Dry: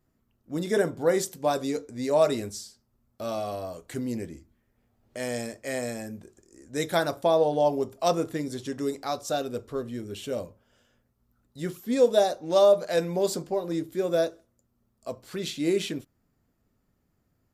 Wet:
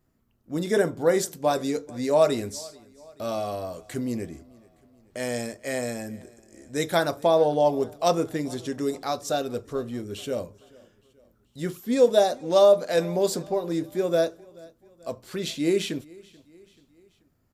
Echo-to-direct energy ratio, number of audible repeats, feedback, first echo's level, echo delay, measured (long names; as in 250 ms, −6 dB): −22.5 dB, 2, 52%, −24.0 dB, 434 ms